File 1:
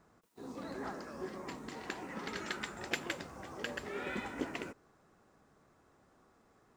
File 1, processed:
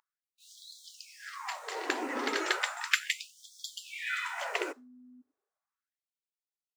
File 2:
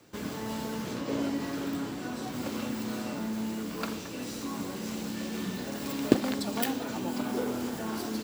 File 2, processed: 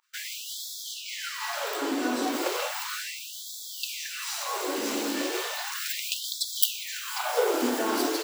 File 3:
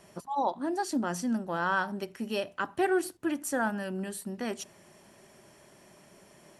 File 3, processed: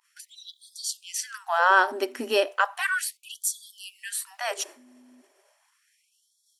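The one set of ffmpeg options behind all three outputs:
-filter_complex "[0:a]agate=range=0.0224:threshold=0.00562:ratio=3:detection=peak,asplit=2[s0][s1];[s1]aeval=exprs='clip(val(0),-1,0.188)':c=same,volume=0.335[s2];[s0][s2]amix=inputs=2:normalize=0,aeval=exprs='val(0)+0.00708*(sin(2*PI*50*n/s)+sin(2*PI*2*50*n/s)/2+sin(2*PI*3*50*n/s)/3+sin(2*PI*4*50*n/s)/4+sin(2*PI*5*50*n/s)/5)':c=same,aeval=exprs='0.794*(cos(1*acos(clip(val(0)/0.794,-1,1)))-cos(1*PI/2))+0.1*(cos(2*acos(clip(val(0)/0.794,-1,1)))-cos(2*PI/2))+0.0282*(cos(4*acos(clip(val(0)/0.794,-1,1)))-cos(4*PI/2))':c=same,afftfilt=real='re*gte(b*sr/1024,220*pow(3300/220,0.5+0.5*sin(2*PI*0.35*pts/sr)))':imag='im*gte(b*sr/1024,220*pow(3300/220,0.5+0.5*sin(2*PI*0.35*pts/sr)))':win_size=1024:overlap=0.75,volume=2.37"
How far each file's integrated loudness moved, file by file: +8.0 LU, +4.0 LU, +5.5 LU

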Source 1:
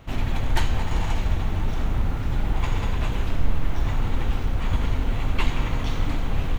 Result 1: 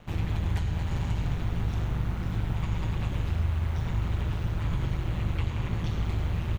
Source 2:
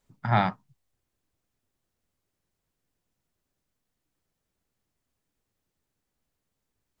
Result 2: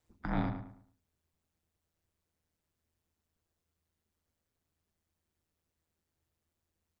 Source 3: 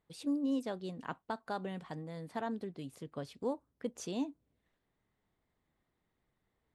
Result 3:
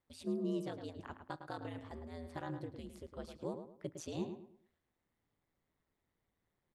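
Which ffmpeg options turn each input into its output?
-filter_complex "[0:a]acrossover=split=470|1100[s0][s1][s2];[s0]acompressor=threshold=0.0891:ratio=4[s3];[s1]acompressor=threshold=0.00562:ratio=4[s4];[s2]acompressor=threshold=0.01:ratio=4[s5];[s3][s4][s5]amix=inputs=3:normalize=0,bandreject=f=60:t=h:w=6,bandreject=f=120:t=h:w=6,bandreject=f=180:t=h:w=6,aeval=exprs='val(0)*sin(2*PI*81*n/s)':c=same,asplit=2[s6][s7];[s7]adelay=108,lowpass=f=2500:p=1,volume=0.398,asplit=2[s8][s9];[s9]adelay=108,lowpass=f=2500:p=1,volume=0.32,asplit=2[s10][s11];[s11]adelay=108,lowpass=f=2500:p=1,volume=0.32,asplit=2[s12][s13];[s13]adelay=108,lowpass=f=2500:p=1,volume=0.32[s14];[s8][s10][s12][s14]amix=inputs=4:normalize=0[s15];[s6][s15]amix=inputs=2:normalize=0,volume=0.891"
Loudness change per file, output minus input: -3.0 LU, -10.5 LU, -4.5 LU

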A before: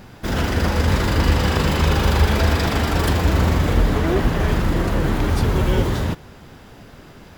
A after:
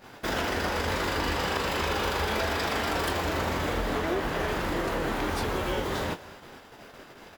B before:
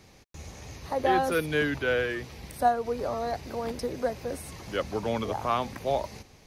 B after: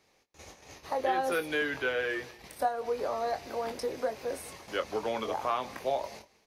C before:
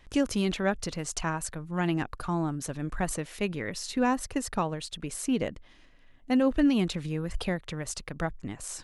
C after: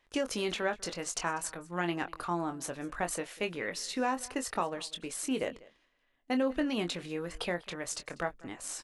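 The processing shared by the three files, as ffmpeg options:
-filter_complex "[0:a]agate=range=0.316:threshold=0.00794:ratio=16:detection=peak,bass=f=250:g=-14,treble=f=4000:g=-2,acompressor=threshold=0.0447:ratio=3,asplit=2[s0][s1];[s1]adelay=23,volume=0.376[s2];[s0][s2]amix=inputs=2:normalize=0,asplit=2[s3][s4];[s4]aecho=0:1:195:0.0794[s5];[s3][s5]amix=inputs=2:normalize=0"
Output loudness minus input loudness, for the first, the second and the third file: -9.0 LU, -3.5 LU, -4.5 LU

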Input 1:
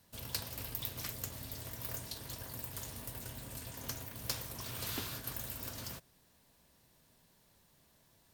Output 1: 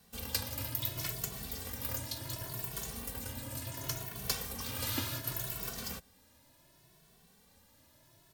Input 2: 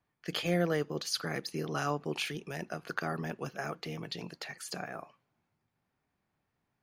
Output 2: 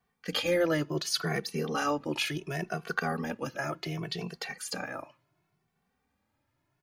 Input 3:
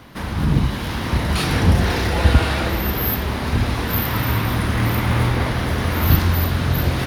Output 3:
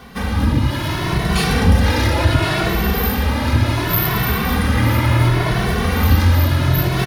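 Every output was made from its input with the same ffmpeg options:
-filter_complex "[0:a]asplit=2[s0][s1];[s1]alimiter=limit=0.251:level=0:latency=1:release=119,volume=1.26[s2];[s0][s2]amix=inputs=2:normalize=0,asplit=2[s3][s4];[s4]adelay=2.2,afreqshift=0.69[s5];[s3][s5]amix=inputs=2:normalize=1"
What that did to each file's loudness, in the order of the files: +4.0 LU, +3.5 LU, +2.5 LU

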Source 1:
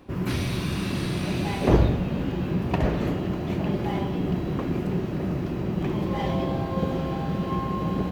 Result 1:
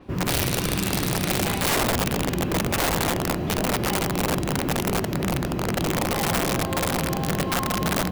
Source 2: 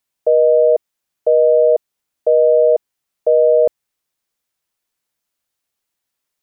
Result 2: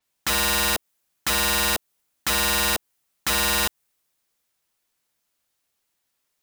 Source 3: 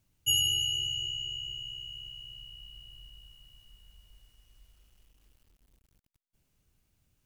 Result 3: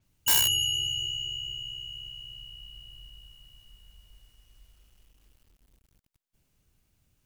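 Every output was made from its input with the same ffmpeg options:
-af "acompressor=threshold=0.178:ratio=4,aeval=exprs='(mod(10*val(0)+1,2)-1)/10':c=same,adynamicequalizer=threshold=0.00891:dfrequency=7600:dqfactor=0.7:tfrequency=7600:tqfactor=0.7:attack=5:release=100:ratio=0.375:range=2.5:mode=boostabove:tftype=highshelf,volume=1.33"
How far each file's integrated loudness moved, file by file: +2.5 LU, -7.5 LU, +3.5 LU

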